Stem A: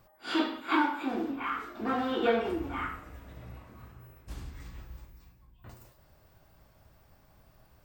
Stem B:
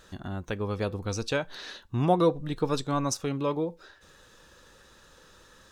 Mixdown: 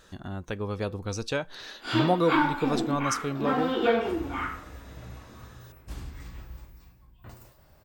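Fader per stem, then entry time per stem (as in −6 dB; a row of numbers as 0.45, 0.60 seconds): +3.0, −1.0 decibels; 1.60, 0.00 seconds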